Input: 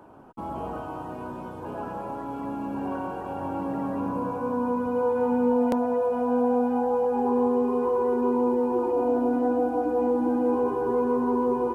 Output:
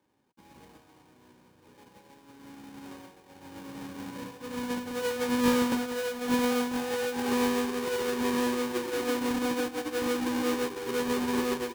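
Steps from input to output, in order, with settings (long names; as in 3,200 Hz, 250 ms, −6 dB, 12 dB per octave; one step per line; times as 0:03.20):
each half-wave held at its own peak
notch comb filter 670 Hz
expander for the loud parts 2.5 to 1, over −32 dBFS
level −3.5 dB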